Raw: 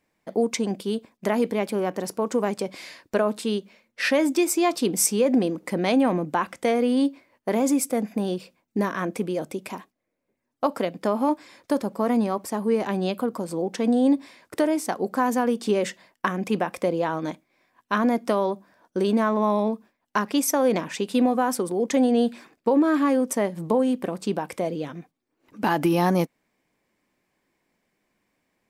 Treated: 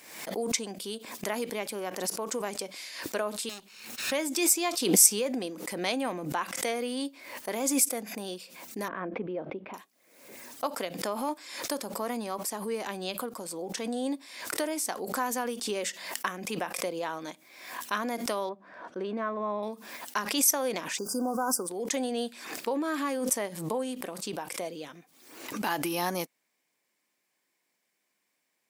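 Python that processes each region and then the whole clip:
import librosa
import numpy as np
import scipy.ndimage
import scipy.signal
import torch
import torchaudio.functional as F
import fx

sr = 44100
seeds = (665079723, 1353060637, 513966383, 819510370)

y = fx.chain(x, sr, fx.lower_of_two(delay_ms=0.75),
    fx.clip_hard(threshold_db=-32.0),
    fx.band_squash(depth_pct=70), at=(3.49, 4.12))
y = fx.chain(y, sr, fx.bessel_lowpass(hz=1800.0, order=6),
    fx.tilt_shelf(db=4.5, hz=1100.0), at=(8.88, 9.74))
y = fx.chain(y, sr, fx.lowpass(hz=1800.0, slope=12),
    fx.notch(hz=870.0, q=11.0), at=(18.49, 19.63))
y = fx.low_shelf(y, sr, hz=130.0, db=10.0, at=(20.97, 21.66), fade=0.02)
y = fx.dmg_noise_colour(y, sr, seeds[0], colour='pink', level_db=-56.0, at=(20.97, 21.66), fade=0.02)
y = fx.brickwall_bandstop(y, sr, low_hz=1600.0, high_hz=4600.0, at=(20.97, 21.66), fade=0.02)
y = fx.highpass(y, sr, hz=450.0, slope=6)
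y = fx.high_shelf(y, sr, hz=3100.0, db=12.0)
y = fx.pre_swell(y, sr, db_per_s=64.0)
y = F.gain(torch.from_numpy(y), -7.5).numpy()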